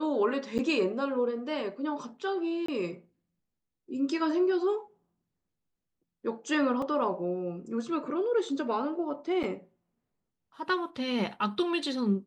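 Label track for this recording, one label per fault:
0.580000	0.590000	dropout 9 ms
2.660000	2.680000	dropout 24 ms
6.820000	6.820000	dropout 3.1 ms
9.430000	9.440000	dropout 7.4 ms

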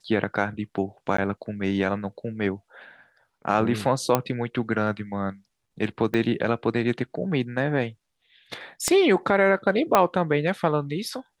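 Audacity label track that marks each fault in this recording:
1.170000	1.180000	dropout 14 ms
4.150000	4.150000	pop -6 dBFS
6.140000	6.140000	dropout 2.7 ms
8.880000	8.880000	pop -8 dBFS
9.950000	9.950000	pop -4 dBFS

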